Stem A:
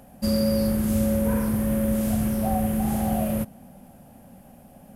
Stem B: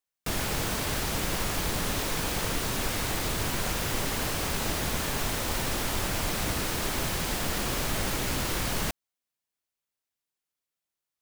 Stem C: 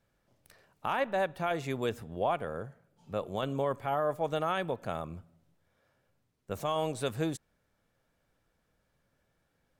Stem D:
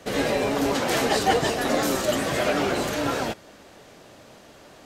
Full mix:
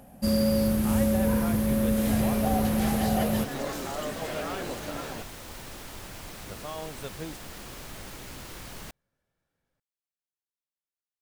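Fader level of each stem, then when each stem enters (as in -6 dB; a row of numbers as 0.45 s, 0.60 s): -1.5 dB, -12.5 dB, -7.0 dB, -12.0 dB; 0.00 s, 0.00 s, 0.00 s, 1.90 s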